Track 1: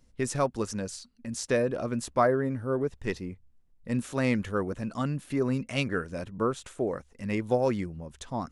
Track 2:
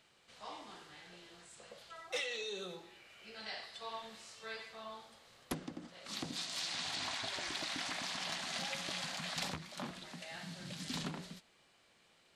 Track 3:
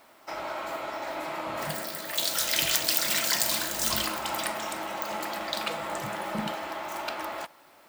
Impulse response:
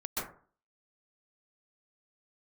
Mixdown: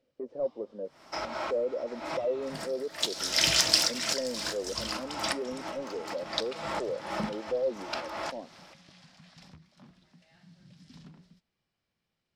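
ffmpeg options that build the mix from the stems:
-filter_complex "[0:a]highpass=f=240:w=0.5412,highpass=f=240:w=1.3066,asoftclip=type=tanh:threshold=-26.5dB,lowpass=f=550:t=q:w=4.9,volume=-9dB,asplit=2[a][b];[1:a]bass=f=250:g=13,treble=f=4k:g=-6,volume=-17dB[c];[2:a]lowpass=7.8k,lowshelf=f=140:g=7.5,adelay=850,volume=1dB[d];[b]apad=whole_len=385201[e];[d][e]sidechaincompress=threshold=-48dB:ratio=6:attack=6:release=149[f];[a][c][f]amix=inputs=3:normalize=0,equalizer=f=5.3k:w=3.8:g=9.5"

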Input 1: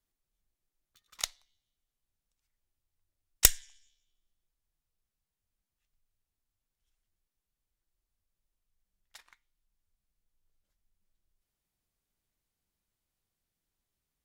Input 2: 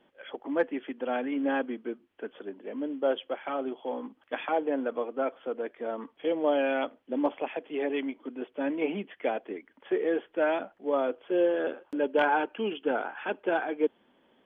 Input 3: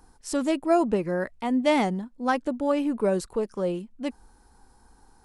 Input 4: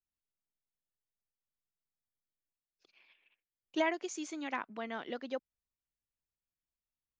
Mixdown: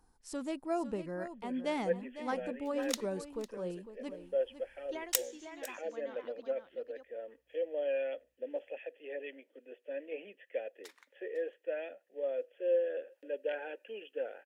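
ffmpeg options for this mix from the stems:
-filter_complex "[0:a]acompressor=threshold=-30dB:ratio=2.5,highpass=500,adelay=1700,volume=-1dB,asplit=2[a][b];[b]volume=-18dB[c];[1:a]asplit=3[d][e][f];[d]bandpass=f=530:t=q:w=8,volume=0dB[g];[e]bandpass=f=1.84k:t=q:w=8,volume=-6dB[h];[f]bandpass=f=2.48k:t=q:w=8,volume=-9dB[i];[g][h][i]amix=inputs=3:normalize=0,highshelf=f=2.5k:g=8,adelay=1300,volume=-3dB[j];[2:a]volume=-13dB,asplit=2[k][l];[l]volume=-11.5dB[m];[3:a]aeval=exprs='val(0)+0.000178*(sin(2*PI*60*n/s)+sin(2*PI*2*60*n/s)/2+sin(2*PI*3*60*n/s)/3+sin(2*PI*4*60*n/s)/4+sin(2*PI*5*60*n/s)/5)':c=same,adelay=1150,volume=-12dB,asplit=2[n][o];[o]volume=-6.5dB[p];[c][m][p]amix=inputs=3:normalize=0,aecho=0:1:503:1[q];[a][j][k][n][q]amix=inputs=5:normalize=0"

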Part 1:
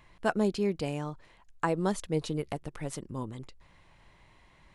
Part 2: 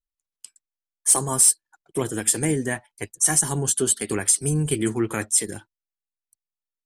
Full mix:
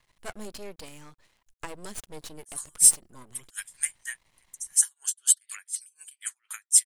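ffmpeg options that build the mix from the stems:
-filter_complex "[0:a]crystalizer=i=4:c=0,aeval=exprs='max(val(0),0)':c=same,volume=-7dB[a];[1:a]highpass=f=1.5k:w=0.5412,highpass=f=1.5k:w=1.3066,highshelf=f=4.5k:g=7,aeval=exprs='val(0)*pow(10,-36*(0.5-0.5*cos(2*PI*4.1*n/s))/20)':c=same,adelay=1400,volume=-3dB[b];[a][b]amix=inputs=2:normalize=0"

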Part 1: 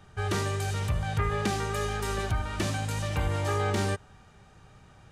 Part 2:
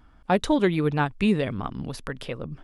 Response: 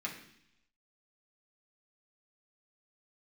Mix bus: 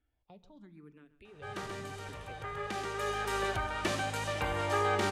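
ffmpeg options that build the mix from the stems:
-filter_complex "[0:a]bass=f=250:g=-13,treble=f=4k:g=-6,acontrast=49,adelay=1250,volume=-4.5dB,asplit=2[a][b];[b]volume=-14.5dB[c];[1:a]acrossover=split=490|2700[d][e][f];[d]acompressor=threshold=-28dB:ratio=4[g];[e]acompressor=threshold=-43dB:ratio=4[h];[f]acompressor=threshold=-51dB:ratio=4[i];[g][h][i]amix=inputs=3:normalize=0,asplit=2[j][k];[k]afreqshift=0.87[l];[j][l]amix=inputs=2:normalize=1,volume=-15dB,afade=t=in:st=1.14:d=0.52:silence=0.446684,asplit=4[m][n][o][p];[n]volume=-12dB[q];[o]volume=-14.5dB[r];[p]apad=whole_len=280783[s];[a][s]sidechaincompress=threshold=-57dB:ratio=8:attack=16:release=1110[t];[2:a]atrim=start_sample=2205[u];[q][u]afir=irnorm=-1:irlink=0[v];[c][r]amix=inputs=2:normalize=0,aecho=0:1:132:1[w];[t][m][v][w]amix=inputs=4:normalize=0"

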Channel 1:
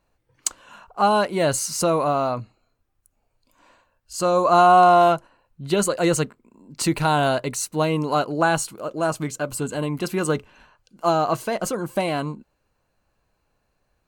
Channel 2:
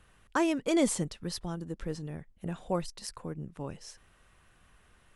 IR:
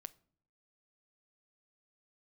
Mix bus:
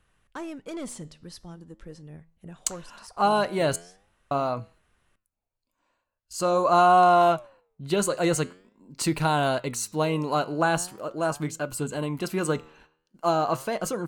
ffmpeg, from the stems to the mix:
-filter_complex "[0:a]agate=range=-14dB:threshold=-50dB:ratio=16:detection=peak,adelay=2200,volume=1dB,asplit=3[a][b][c];[a]atrim=end=3.76,asetpts=PTS-STARTPTS,afade=t=out:st=3.756:d=0.004:c=hsin[d];[b]atrim=start=3.76:end=4.31,asetpts=PTS-STARTPTS,volume=0[e];[c]atrim=start=4.31,asetpts=PTS-STARTPTS,afade=t=in:d=0.004:c=hsin[f];[d][e][f]concat=n=3:v=0:a=1[g];[1:a]asoftclip=type=tanh:threshold=-23.5dB,volume=-1.5dB[h];[g][h]amix=inputs=2:normalize=0,flanger=delay=6.1:depth=6.9:regen=89:speed=0.43:shape=sinusoidal"

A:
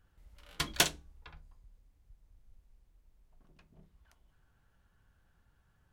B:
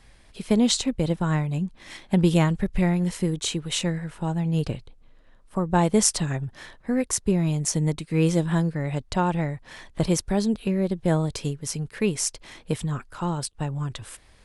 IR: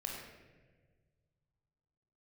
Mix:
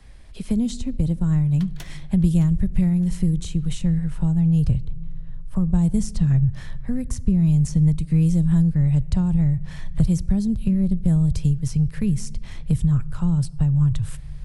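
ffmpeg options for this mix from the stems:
-filter_complex "[0:a]aeval=exprs='val(0)*pow(10,-24*if(lt(mod(6.6*n/s,1),2*abs(6.6)/1000),1-mod(6.6*n/s,1)/(2*abs(6.6)/1000),(mod(6.6*n/s,1)-2*abs(6.6)/1000)/(1-2*abs(6.6)/1000))/20)':c=same,adelay=1000,volume=-10dB,asplit=3[a][b][c];[b]volume=-12.5dB[d];[c]volume=-12.5dB[e];[1:a]asubboost=boost=6:cutoff=120,acrossover=split=82|260|6100[f][g][h][i];[f]acompressor=threshold=-29dB:ratio=4[j];[g]acompressor=threshold=-22dB:ratio=4[k];[h]acompressor=threshold=-42dB:ratio=4[l];[i]acompressor=threshold=-42dB:ratio=4[m];[j][k][l][m]amix=inputs=4:normalize=0,volume=-1dB,asplit=2[n][o];[o]volume=-17dB[p];[2:a]atrim=start_sample=2205[q];[d][p]amix=inputs=2:normalize=0[r];[r][q]afir=irnorm=-1:irlink=0[s];[e]aecho=0:1:615|1230|1845|2460|3075|3690:1|0.4|0.16|0.064|0.0256|0.0102[t];[a][n][s][t]amix=inputs=4:normalize=0,lowshelf=f=270:g=8"

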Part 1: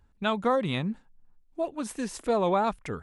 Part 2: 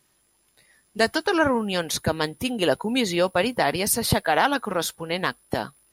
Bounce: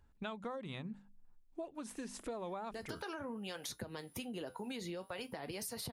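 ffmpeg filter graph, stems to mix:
-filter_complex "[0:a]bandreject=f=50:t=h:w=6,bandreject=f=100:t=h:w=6,bandreject=f=150:t=h:w=6,bandreject=f=200:t=h:w=6,bandreject=f=250:t=h:w=6,deesser=0.65,volume=-4dB[a];[1:a]alimiter=limit=-16.5dB:level=0:latency=1:release=55,flanger=delay=8:depth=3.4:regen=-69:speed=0.49:shape=sinusoidal,acrossover=split=470[b][c];[b]aeval=exprs='val(0)*(1-0.5/2+0.5/2*cos(2*PI*1.9*n/s))':c=same[d];[c]aeval=exprs='val(0)*(1-0.5/2-0.5/2*cos(2*PI*1.9*n/s))':c=same[e];[d][e]amix=inputs=2:normalize=0,adelay=1750,volume=-0.5dB[f];[a][f]amix=inputs=2:normalize=0,acompressor=threshold=-41dB:ratio=6"

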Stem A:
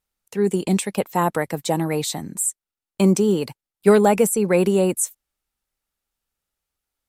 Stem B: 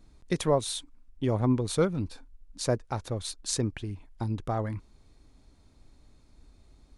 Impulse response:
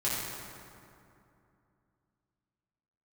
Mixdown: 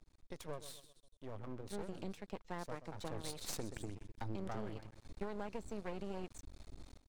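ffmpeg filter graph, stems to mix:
-filter_complex "[0:a]lowpass=f=5.7k:w=0.5412,lowpass=f=5.7k:w=1.3066,adelay=1350,volume=-18.5dB[a];[1:a]acompressor=mode=upward:threshold=-35dB:ratio=2.5,acrossover=split=570[b][c];[b]aeval=exprs='val(0)*(1-0.5/2+0.5/2*cos(2*PI*3.7*n/s))':c=same[d];[c]aeval=exprs='val(0)*(1-0.5/2-0.5/2*cos(2*PI*3.7*n/s))':c=same[e];[d][e]amix=inputs=2:normalize=0,volume=-0.5dB,afade=t=in:st=2.93:d=0.26:silence=0.223872,asplit=2[f][g];[g]volume=-13.5dB,aecho=0:1:127|254|381|508|635|762:1|0.41|0.168|0.0689|0.0283|0.0116[h];[a][f][h]amix=inputs=3:normalize=0,aeval=exprs='max(val(0),0)':c=same,acompressor=threshold=-37dB:ratio=6"

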